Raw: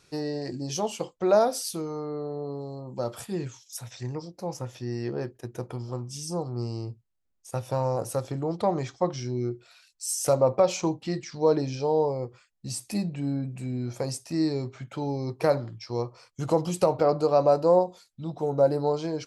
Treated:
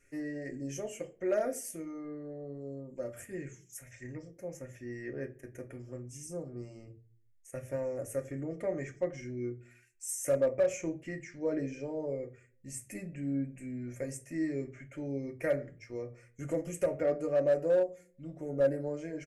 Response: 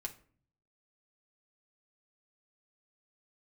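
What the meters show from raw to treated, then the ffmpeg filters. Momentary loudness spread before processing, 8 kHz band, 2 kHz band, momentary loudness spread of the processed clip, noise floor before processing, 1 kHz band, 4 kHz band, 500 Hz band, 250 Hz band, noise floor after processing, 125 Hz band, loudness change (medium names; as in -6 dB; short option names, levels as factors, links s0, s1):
14 LU, -7.5 dB, -1.5 dB, 16 LU, -67 dBFS, -18.5 dB, under -15 dB, -7.5 dB, -7.0 dB, -64 dBFS, -11.0 dB, -7.5 dB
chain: -filter_complex "[0:a]firequalizer=gain_entry='entry(100,0);entry(160,-13);entry(280,-5);entry(600,-5);entry(890,-23);entry(1900,6);entry(3900,-29);entry(6500,-4)':delay=0.05:min_phase=1[s0];[1:a]atrim=start_sample=2205,asetrate=61740,aresample=44100[s1];[s0][s1]afir=irnorm=-1:irlink=0,asplit=2[s2][s3];[s3]aeval=exprs='0.0531*(abs(mod(val(0)/0.0531+3,4)-2)-1)':c=same,volume=0.355[s4];[s2][s4]amix=inputs=2:normalize=0"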